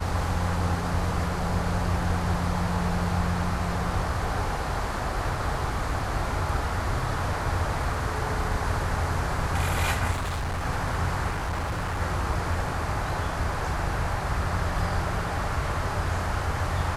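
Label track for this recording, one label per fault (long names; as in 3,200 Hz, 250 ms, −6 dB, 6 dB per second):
10.110000	10.640000	clipping −26 dBFS
11.300000	12.010000	clipping −25.5 dBFS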